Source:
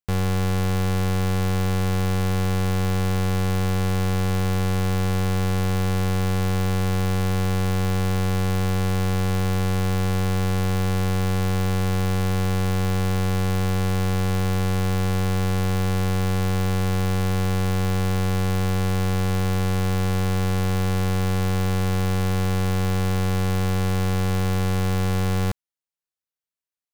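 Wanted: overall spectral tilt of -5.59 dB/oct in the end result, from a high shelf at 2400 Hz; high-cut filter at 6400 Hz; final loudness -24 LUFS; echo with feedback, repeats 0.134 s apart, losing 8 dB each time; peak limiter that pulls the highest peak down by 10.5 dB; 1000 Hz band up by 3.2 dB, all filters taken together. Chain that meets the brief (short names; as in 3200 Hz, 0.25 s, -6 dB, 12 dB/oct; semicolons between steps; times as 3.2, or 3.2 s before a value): LPF 6400 Hz; bell 1000 Hz +3.5 dB; high shelf 2400 Hz +4 dB; limiter -26.5 dBFS; feedback echo 0.134 s, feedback 40%, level -8 dB; gain +9.5 dB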